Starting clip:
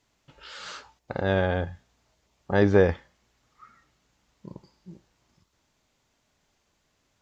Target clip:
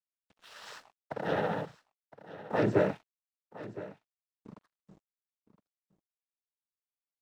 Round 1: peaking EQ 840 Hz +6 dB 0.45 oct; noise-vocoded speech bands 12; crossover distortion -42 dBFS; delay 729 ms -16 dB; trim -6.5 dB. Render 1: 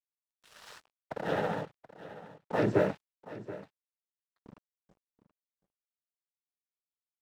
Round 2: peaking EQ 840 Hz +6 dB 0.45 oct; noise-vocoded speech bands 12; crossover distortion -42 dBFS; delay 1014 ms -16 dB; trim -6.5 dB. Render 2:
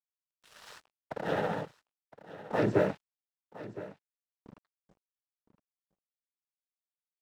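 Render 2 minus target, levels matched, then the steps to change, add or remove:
crossover distortion: distortion +7 dB
change: crossover distortion -50.5 dBFS

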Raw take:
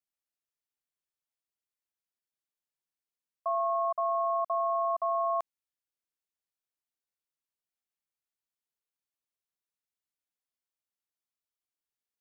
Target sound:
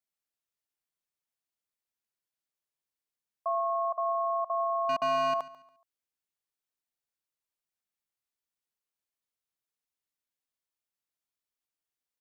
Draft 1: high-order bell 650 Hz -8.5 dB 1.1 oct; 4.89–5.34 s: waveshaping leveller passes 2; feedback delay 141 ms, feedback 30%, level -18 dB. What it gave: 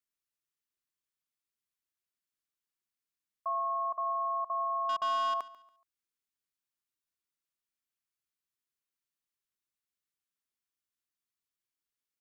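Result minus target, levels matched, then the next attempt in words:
500 Hz band -6.5 dB
4.89–5.34 s: waveshaping leveller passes 2; feedback delay 141 ms, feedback 30%, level -18 dB

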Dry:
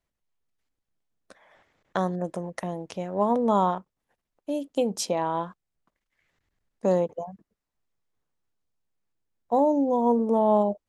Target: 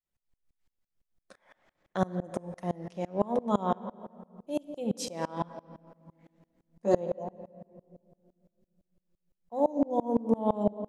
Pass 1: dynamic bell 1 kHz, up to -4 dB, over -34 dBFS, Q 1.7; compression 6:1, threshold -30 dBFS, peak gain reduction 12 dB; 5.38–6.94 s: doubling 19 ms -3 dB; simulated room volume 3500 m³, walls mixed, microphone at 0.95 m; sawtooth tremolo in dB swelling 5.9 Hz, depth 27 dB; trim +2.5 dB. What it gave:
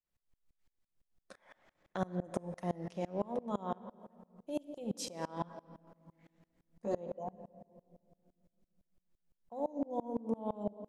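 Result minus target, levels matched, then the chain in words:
compression: peak gain reduction +12 dB
dynamic bell 1 kHz, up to -4 dB, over -34 dBFS, Q 1.7; 5.38–6.94 s: doubling 19 ms -3 dB; simulated room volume 3500 m³, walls mixed, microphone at 0.95 m; sawtooth tremolo in dB swelling 5.9 Hz, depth 27 dB; trim +2.5 dB

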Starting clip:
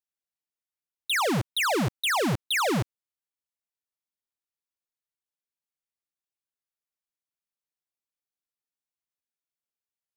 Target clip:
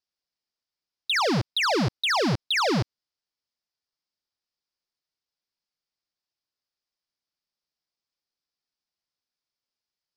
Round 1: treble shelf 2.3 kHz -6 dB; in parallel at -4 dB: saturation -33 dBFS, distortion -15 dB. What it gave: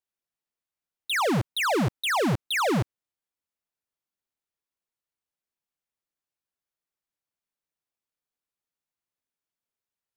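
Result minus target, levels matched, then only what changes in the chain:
4 kHz band -3.5 dB
add first: resonant low-pass 5 kHz, resonance Q 4.9

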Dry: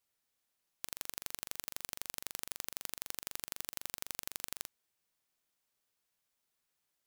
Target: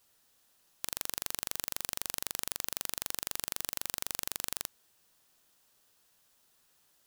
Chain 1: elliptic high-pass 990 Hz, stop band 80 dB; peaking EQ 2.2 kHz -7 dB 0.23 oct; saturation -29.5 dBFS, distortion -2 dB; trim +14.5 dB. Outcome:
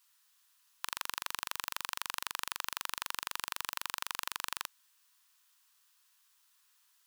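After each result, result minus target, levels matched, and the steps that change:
1 kHz band +9.5 dB; saturation: distortion +7 dB
remove: elliptic high-pass 990 Hz, stop band 80 dB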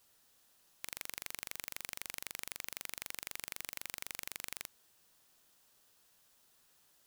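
saturation: distortion +7 dB
change: saturation -20 dBFS, distortion -9 dB

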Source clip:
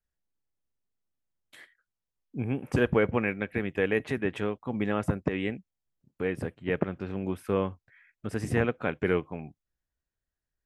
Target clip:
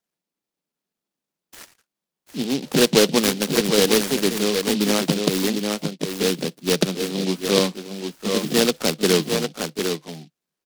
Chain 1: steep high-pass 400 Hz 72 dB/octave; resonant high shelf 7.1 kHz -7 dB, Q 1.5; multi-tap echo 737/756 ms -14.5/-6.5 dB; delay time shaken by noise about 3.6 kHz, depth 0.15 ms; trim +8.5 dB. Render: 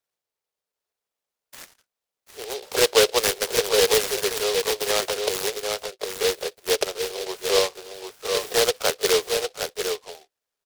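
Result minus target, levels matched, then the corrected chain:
125 Hz band -14.5 dB
steep high-pass 150 Hz 72 dB/octave; resonant high shelf 7.1 kHz -7 dB, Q 1.5; multi-tap echo 737/756 ms -14.5/-6.5 dB; delay time shaken by noise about 3.6 kHz, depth 0.15 ms; trim +8.5 dB

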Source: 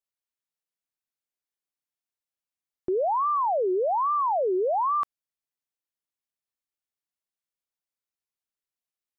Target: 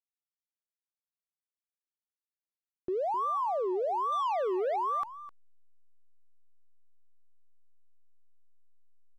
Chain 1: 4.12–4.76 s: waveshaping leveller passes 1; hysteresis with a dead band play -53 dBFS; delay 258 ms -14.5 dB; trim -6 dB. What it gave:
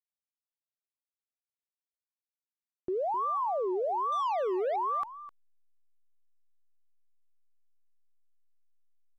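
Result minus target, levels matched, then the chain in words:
hysteresis with a dead band: distortion -9 dB
4.12–4.76 s: waveshaping leveller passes 1; hysteresis with a dead band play -44 dBFS; delay 258 ms -14.5 dB; trim -6 dB

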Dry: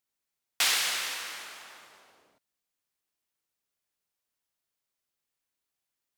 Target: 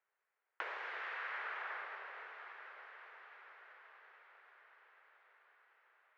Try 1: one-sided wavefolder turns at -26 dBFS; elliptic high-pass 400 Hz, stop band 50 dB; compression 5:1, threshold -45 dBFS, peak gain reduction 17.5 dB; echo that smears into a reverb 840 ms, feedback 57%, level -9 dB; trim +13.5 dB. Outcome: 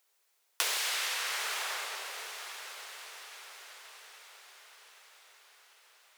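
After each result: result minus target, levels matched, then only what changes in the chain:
one-sided wavefolder: distortion -9 dB; 2 kHz band -5.0 dB
change: one-sided wavefolder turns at -33.5 dBFS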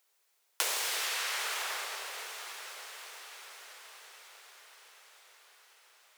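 2 kHz band -5.5 dB
add after compression: four-pole ladder low-pass 2.1 kHz, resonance 40%

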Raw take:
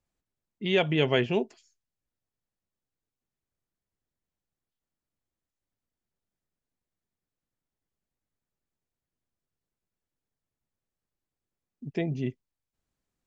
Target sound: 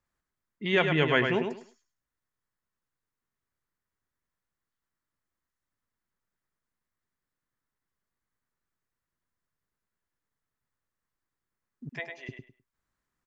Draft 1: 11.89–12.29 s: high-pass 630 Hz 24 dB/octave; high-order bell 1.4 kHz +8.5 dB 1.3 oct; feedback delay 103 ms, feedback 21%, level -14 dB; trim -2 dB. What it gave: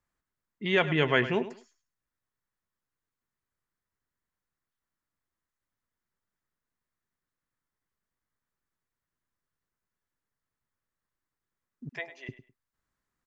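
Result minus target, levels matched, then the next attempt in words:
echo-to-direct -8 dB
11.89–12.29 s: high-pass 630 Hz 24 dB/octave; high-order bell 1.4 kHz +8.5 dB 1.3 oct; feedback delay 103 ms, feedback 21%, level -6 dB; trim -2 dB

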